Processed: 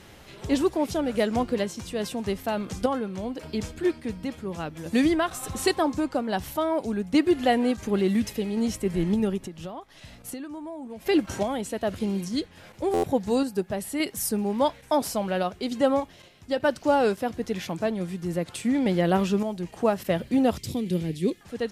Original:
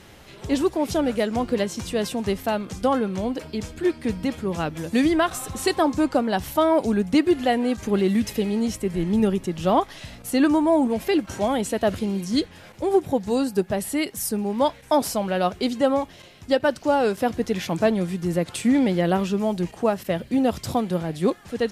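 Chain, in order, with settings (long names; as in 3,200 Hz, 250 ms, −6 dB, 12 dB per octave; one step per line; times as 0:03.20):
sample-and-hold tremolo
0:09.37–0:11.06: downward compressor 20 to 1, threshold −34 dBFS, peak gain reduction 19 dB
0:20.58–0:21.41: flat-topped bell 960 Hz −16 dB
buffer that repeats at 0:12.93, samples 512, times 8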